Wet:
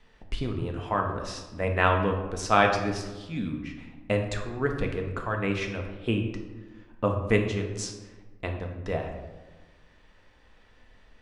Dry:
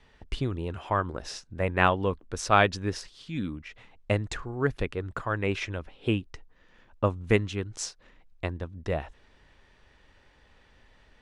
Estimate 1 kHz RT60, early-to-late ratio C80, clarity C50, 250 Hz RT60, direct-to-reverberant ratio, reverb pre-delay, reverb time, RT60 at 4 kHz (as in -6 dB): 1.2 s, 8.0 dB, 5.5 dB, 1.6 s, 2.0 dB, 3 ms, 1.3 s, 0.70 s